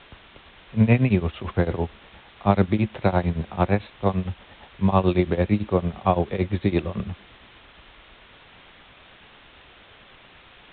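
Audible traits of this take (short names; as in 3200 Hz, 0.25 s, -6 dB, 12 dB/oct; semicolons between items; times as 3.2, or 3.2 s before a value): tremolo triangle 8.9 Hz, depth 95%; a quantiser's noise floor 8-bit, dither triangular; A-law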